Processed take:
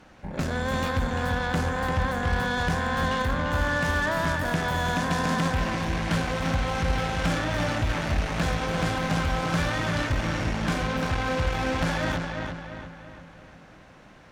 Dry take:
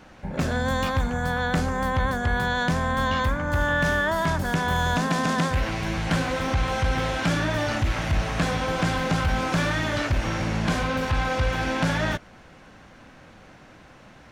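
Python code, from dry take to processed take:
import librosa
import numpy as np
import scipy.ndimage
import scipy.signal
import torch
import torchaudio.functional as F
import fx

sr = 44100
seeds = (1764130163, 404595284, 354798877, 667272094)

y = fx.echo_filtered(x, sr, ms=345, feedback_pct=49, hz=4600.0, wet_db=-5.0)
y = fx.cheby_harmonics(y, sr, harmonics=(6,), levels_db=(-20,), full_scale_db=-13.0)
y = y * 10.0 ** (-3.5 / 20.0)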